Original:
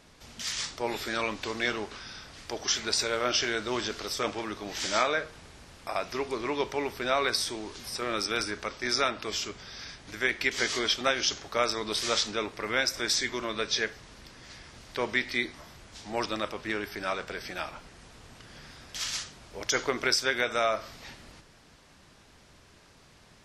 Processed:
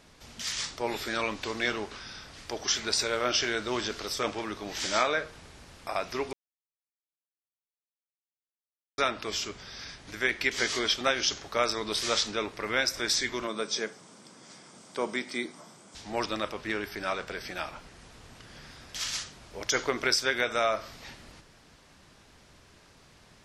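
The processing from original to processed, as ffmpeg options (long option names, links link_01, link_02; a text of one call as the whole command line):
ffmpeg -i in.wav -filter_complex "[0:a]asettb=1/sr,asplit=3[link_01][link_02][link_03];[link_01]atrim=end=13.474[link_04];[link_02]atrim=start=13.47:end=15.95,asetpts=PTS-STARTPTS,afade=type=in:duration=0.004:curve=qsin,afade=type=out:start_time=2.476:duration=0.004:curve=qsin,highpass=frequency=160:width=0.5412,highpass=frequency=160:width=1.3066,equalizer=frequency=190:width_type=q:width=4:gain=4,equalizer=frequency=1800:width_type=q:width=4:gain=-9,equalizer=frequency=2700:width_type=q:width=4:gain=-8,equalizer=frequency=4100:width_type=q:width=4:gain=-7,equalizer=frequency=8300:width_type=q:width=4:gain=10,lowpass=frequency=9800:width=0.5412,lowpass=frequency=9800:width=1.3066[link_05];[link_03]atrim=start=15.946[link_06];[link_04][link_05]acrossfade=duration=0.004:curve1=hsin:curve2=qsin[link_07];[link_07][link_06]acrossfade=duration=0.004:curve1=qsin:curve2=hsin,asplit=3[link_08][link_09][link_10];[link_08]atrim=end=6.33,asetpts=PTS-STARTPTS,afade=type=out:start_time=6.326:duration=0.004:curve=hsin[link_11];[link_09]atrim=start=6.33:end=8.98,asetpts=PTS-STARTPTS,volume=0[link_12];[link_10]atrim=start=8.98,asetpts=PTS-STARTPTS,afade=type=in:duration=0.004:curve=hsin[link_13];[link_11][link_12][link_13]concat=n=3:v=0:a=1" out.wav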